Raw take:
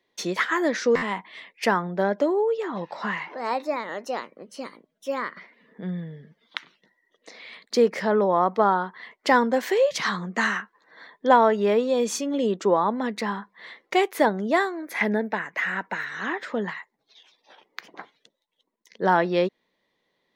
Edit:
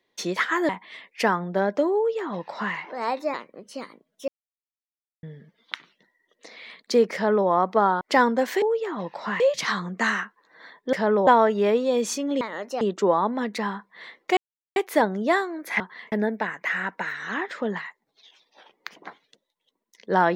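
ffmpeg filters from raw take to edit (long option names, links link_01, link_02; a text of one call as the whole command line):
ffmpeg -i in.wav -filter_complex "[0:a]asplit=15[link_01][link_02][link_03][link_04][link_05][link_06][link_07][link_08][link_09][link_10][link_11][link_12][link_13][link_14][link_15];[link_01]atrim=end=0.692[link_16];[link_02]atrim=start=1.118:end=3.772[link_17];[link_03]atrim=start=4.168:end=5.11,asetpts=PTS-STARTPTS,afade=type=out:start_time=0.938:duration=0.004:curve=hsin[link_18];[link_04]atrim=start=5.11:end=6.06,asetpts=PTS-STARTPTS,volume=0[link_19];[link_05]atrim=start=6.06:end=8.842,asetpts=PTS-STARTPTS,afade=type=in:duration=0.004:curve=hsin[link_20];[link_06]atrim=start=9.158:end=9.772[link_21];[link_07]atrim=start=2.388:end=3.172[link_22];[link_08]atrim=start=9.768:end=11.302[link_23];[link_09]atrim=start=7.968:end=8.312[link_24];[link_10]atrim=start=11.298:end=12.442[link_25];[link_11]atrim=start=3.768:end=4.172[link_26];[link_12]atrim=start=12.438:end=14,asetpts=PTS-STARTPTS,afade=type=out:start_time=1.558:duration=0.004:curve=hsin,apad=pad_dur=0.39[link_27];[link_13]atrim=start=14:end=15.042,asetpts=PTS-STARTPTS,afade=type=in:duration=0.004:curve=hsin[link_28];[link_14]atrim=start=8.838:end=9.162[link_29];[link_15]atrim=start=15.038[link_30];[link_16][link_17]acrossfade=duration=0.004:curve1=hsin:curve2=hsin[link_31];[link_18][link_19][link_20]concat=n=3:v=0:a=1[link_32];[link_31][link_32]acrossfade=duration=0.004:curve1=hsin:curve2=hsin[link_33];[link_33][link_21]acrossfade=duration=0.004:curve1=hsin:curve2=hsin[link_34];[link_34][link_22]acrossfade=duration=0.004:curve1=hsin:curve2=hsin[link_35];[link_35][link_23]acrossfade=duration=0.004:curve1=hsin:curve2=hsin[link_36];[link_36][link_24]acrossfade=duration=0.004:curve1=hsin:curve2=hsin[link_37];[link_37][link_25]acrossfade=duration=0.004:curve1=hsin:curve2=hsin[link_38];[link_38][link_26]acrossfade=duration=0.004:curve1=hsin:curve2=hsin[link_39];[link_27][link_28]concat=n=2:v=0:a=1[link_40];[link_39][link_40]acrossfade=duration=0.004:curve1=hsin:curve2=hsin[link_41];[link_41][link_29]acrossfade=duration=0.004:curve1=hsin:curve2=hsin[link_42];[link_42][link_30]acrossfade=duration=0.004:curve1=hsin:curve2=hsin" out.wav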